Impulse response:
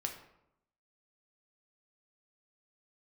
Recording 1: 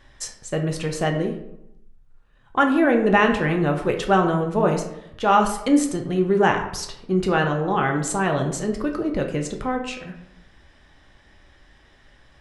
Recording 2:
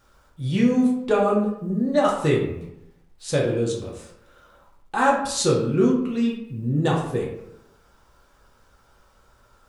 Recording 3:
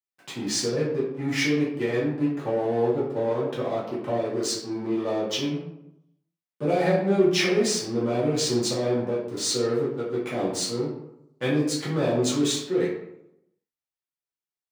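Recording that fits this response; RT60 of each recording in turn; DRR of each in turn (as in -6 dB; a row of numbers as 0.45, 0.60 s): 1; 0.80, 0.80, 0.80 s; 2.5, -3.5, -9.0 dB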